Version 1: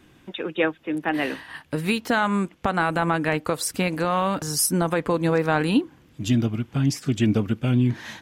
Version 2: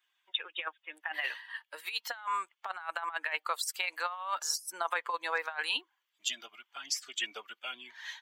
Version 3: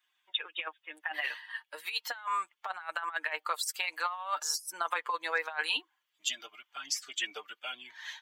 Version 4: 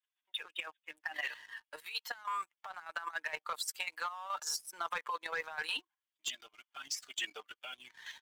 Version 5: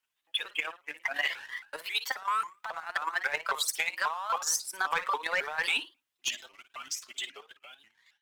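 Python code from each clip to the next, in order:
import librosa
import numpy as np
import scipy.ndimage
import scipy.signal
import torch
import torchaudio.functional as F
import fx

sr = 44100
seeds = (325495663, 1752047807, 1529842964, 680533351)

y1 = fx.bin_expand(x, sr, power=1.5)
y1 = scipy.signal.sosfilt(scipy.signal.butter(4, 880.0, 'highpass', fs=sr, output='sos'), y1)
y1 = fx.over_compress(y1, sr, threshold_db=-33.0, ratio=-0.5)
y2 = y1 + 0.44 * np.pad(y1, (int(6.6 * sr / 1000.0), 0))[:len(y1)]
y3 = fx.leveller(y2, sr, passes=2)
y3 = fx.level_steps(y3, sr, step_db=9)
y3 = y3 * 10.0 ** (-8.5 / 20.0)
y4 = fx.fade_out_tail(y3, sr, length_s=2.31)
y4 = fx.room_flutter(y4, sr, wall_m=9.7, rt60_s=0.27)
y4 = fx.vibrato_shape(y4, sr, shape='saw_up', rate_hz=3.7, depth_cents=250.0)
y4 = y4 * 10.0 ** (8.0 / 20.0)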